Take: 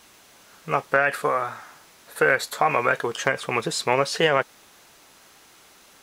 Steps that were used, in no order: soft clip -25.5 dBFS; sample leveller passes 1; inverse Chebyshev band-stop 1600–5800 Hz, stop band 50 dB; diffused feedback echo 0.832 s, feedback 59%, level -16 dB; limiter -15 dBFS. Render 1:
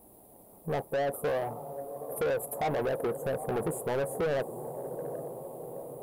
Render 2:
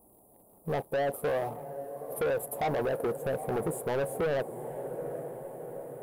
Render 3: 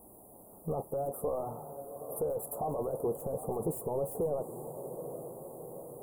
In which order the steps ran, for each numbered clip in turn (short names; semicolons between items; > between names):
inverse Chebyshev band-stop > limiter > diffused feedback echo > soft clip > sample leveller; inverse Chebyshev band-stop > sample leveller > diffused feedback echo > limiter > soft clip; limiter > diffused feedback echo > soft clip > sample leveller > inverse Chebyshev band-stop